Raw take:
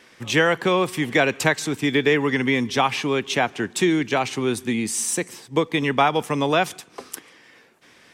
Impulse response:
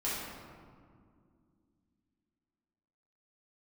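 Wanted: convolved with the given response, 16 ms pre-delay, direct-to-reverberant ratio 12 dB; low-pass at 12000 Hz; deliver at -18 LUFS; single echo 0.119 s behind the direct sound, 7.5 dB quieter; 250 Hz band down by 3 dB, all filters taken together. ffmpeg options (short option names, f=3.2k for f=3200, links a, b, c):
-filter_complex "[0:a]lowpass=12k,equalizer=f=250:t=o:g=-4,aecho=1:1:119:0.422,asplit=2[a][b];[1:a]atrim=start_sample=2205,adelay=16[c];[b][c]afir=irnorm=-1:irlink=0,volume=-18dB[d];[a][d]amix=inputs=2:normalize=0,volume=3.5dB"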